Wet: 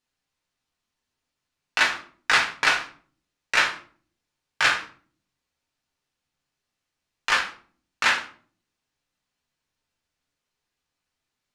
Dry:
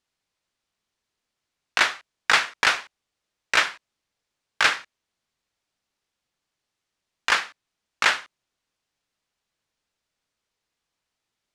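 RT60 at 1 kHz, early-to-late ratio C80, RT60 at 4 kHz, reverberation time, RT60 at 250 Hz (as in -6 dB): 0.40 s, 15.5 dB, 0.30 s, 0.50 s, 0.75 s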